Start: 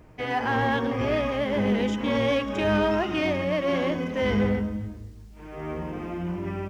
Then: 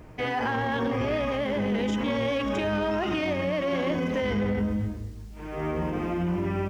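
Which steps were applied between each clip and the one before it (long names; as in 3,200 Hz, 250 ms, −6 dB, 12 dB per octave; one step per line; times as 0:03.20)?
brickwall limiter −24 dBFS, peak gain reduction 10.5 dB
level +4.5 dB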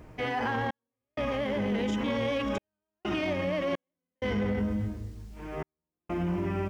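gate pattern "xxx..xxxxxx.." 64 BPM −60 dB
level −2.5 dB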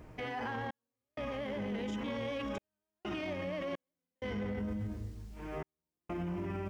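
brickwall limiter −27.5 dBFS, peak gain reduction 5.5 dB
level −3 dB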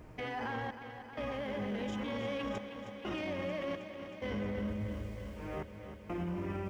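feedback echo at a low word length 315 ms, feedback 80%, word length 12 bits, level −10.5 dB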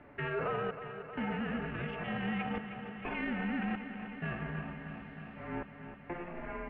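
single-sideband voice off tune −350 Hz 510–3,200 Hz
level +5.5 dB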